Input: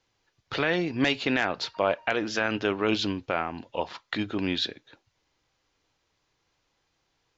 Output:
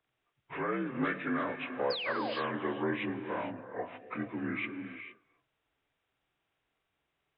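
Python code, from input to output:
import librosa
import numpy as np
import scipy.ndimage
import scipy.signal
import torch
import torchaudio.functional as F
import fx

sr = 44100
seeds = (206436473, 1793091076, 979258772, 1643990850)

y = fx.partial_stretch(x, sr, pct=81)
y = fx.spec_paint(y, sr, seeds[0], shape='fall', start_s=1.9, length_s=0.44, low_hz=500.0, high_hz=5200.0, level_db=-31.0)
y = fx.rev_gated(y, sr, seeds[1], gate_ms=480, shape='rising', drr_db=8.0)
y = y * librosa.db_to_amplitude(-6.5)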